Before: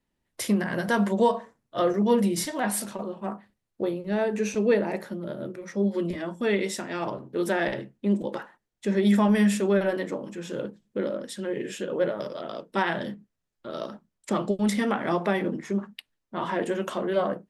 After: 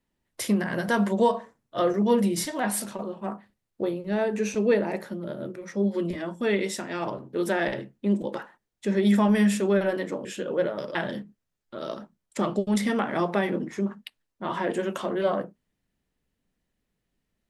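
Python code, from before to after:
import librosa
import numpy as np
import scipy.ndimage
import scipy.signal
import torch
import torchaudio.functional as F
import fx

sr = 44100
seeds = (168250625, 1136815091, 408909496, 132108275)

y = fx.edit(x, sr, fx.cut(start_s=10.25, length_s=1.42),
    fx.cut(start_s=12.37, length_s=0.5), tone=tone)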